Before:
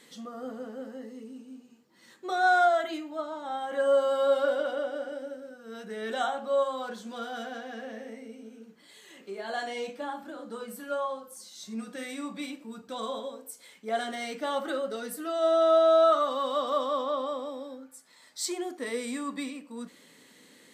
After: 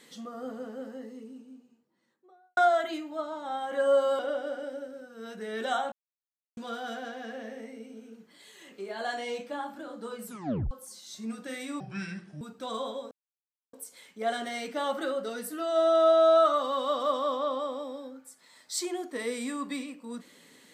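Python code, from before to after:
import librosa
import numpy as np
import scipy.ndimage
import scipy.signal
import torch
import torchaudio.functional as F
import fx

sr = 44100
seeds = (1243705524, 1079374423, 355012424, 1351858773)

y = fx.studio_fade_out(x, sr, start_s=0.84, length_s=1.73)
y = fx.edit(y, sr, fx.cut(start_s=4.19, length_s=0.49),
    fx.silence(start_s=6.41, length_s=0.65),
    fx.tape_stop(start_s=10.74, length_s=0.46),
    fx.speed_span(start_s=12.29, length_s=0.41, speed=0.67),
    fx.insert_silence(at_s=13.4, length_s=0.62), tone=tone)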